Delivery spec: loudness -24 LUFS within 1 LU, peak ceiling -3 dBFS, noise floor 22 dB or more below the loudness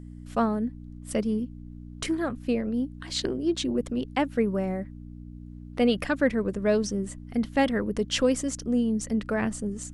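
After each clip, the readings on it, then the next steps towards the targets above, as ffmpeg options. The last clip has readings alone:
hum 60 Hz; highest harmonic 300 Hz; hum level -38 dBFS; loudness -27.5 LUFS; peak level -10.5 dBFS; loudness target -24.0 LUFS
-> -af "bandreject=f=60:t=h:w=4,bandreject=f=120:t=h:w=4,bandreject=f=180:t=h:w=4,bandreject=f=240:t=h:w=4,bandreject=f=300:t=h:w=4"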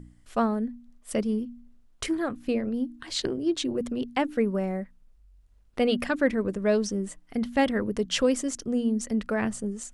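hum not found; loudness -28.0 LUFS; peak level -11.0 dBFS; loudness target -24.0 LUFS
-> -af "volume=1.58"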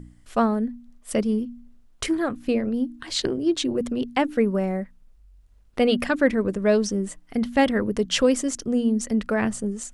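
loudness -24.0 LUFS; peak level -7.0 dBFS; noise floor -54 dBFS

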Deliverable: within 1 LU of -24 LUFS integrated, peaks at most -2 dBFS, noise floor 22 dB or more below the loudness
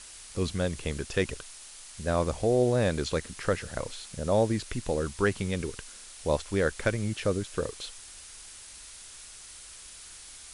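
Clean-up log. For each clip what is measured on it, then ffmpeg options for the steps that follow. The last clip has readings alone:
noise floor -47 dBFS; noise floor target -52 dBFS; loudness -30.0 LUFS; peak level -11.5 dBFS; loudness target -24.0 LUFS
-> -af "afftdn=nr=6:nf=-47"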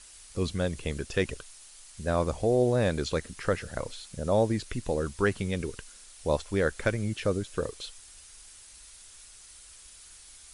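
noise floor -51 dBFS; noise floor target -52 dBFS
-> -af "afftdn=nr=6:nf=-51"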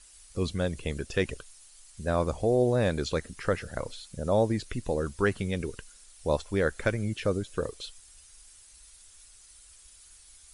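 noise floor -55 dBFS; loudness -30.0 LUFS; peak level -12.0 dBFS; loudness target -24.0 LUFS
-> -af "volume=2"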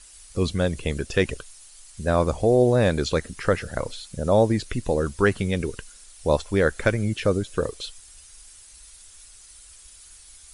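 loudness -24.0 LUFS; peak level -6.0 dBFS; noise floor -49 dBFS

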